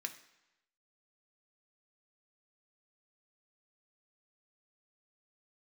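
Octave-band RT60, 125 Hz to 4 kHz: 0.90 s, 0.85 s, 0.90 s, 1.0 s, 1.0 s, 0.90 s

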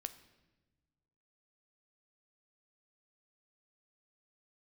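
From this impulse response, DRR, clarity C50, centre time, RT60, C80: 10.0 dB, 14.0 dB, 7 ms, no single decay rate, 16.0 dB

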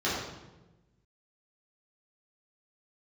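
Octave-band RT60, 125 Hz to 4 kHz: 1.6 s, 1.4 s, 1.2 s, 1.0 s, 0.85 s, 0.75 s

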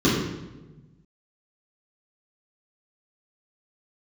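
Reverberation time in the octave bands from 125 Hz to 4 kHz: 1.8 s, 1.5 s, 1.3 s, 0.95 s, 0.90 s, 0.80 s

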